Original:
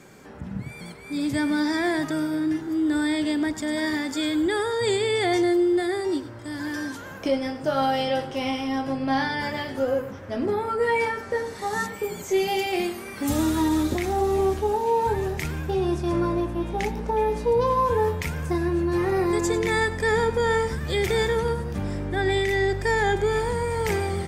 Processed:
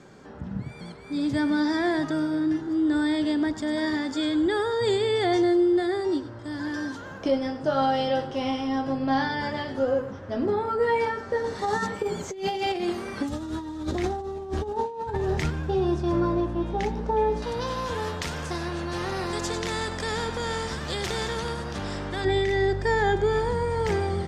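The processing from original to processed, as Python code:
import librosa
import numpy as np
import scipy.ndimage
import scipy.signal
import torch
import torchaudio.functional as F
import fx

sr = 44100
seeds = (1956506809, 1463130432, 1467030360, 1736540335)

y = fx.over_compress(x, sr, threshold_db=-27.0, ratio=-0.5, at=(11.44, 15.5))
y = fx.spectral_comp(y, sr, ratio=2.0, at=(17.42, 22.25))
y = scipy.signal.sosfilt(scipy.signal.butter(2, 5300.0, 'lowpass', fs=sr, output='sos'), y)
y = fx.peak_eq(y, sr, hz=2300.0, db=-7.0, octaves=0.55)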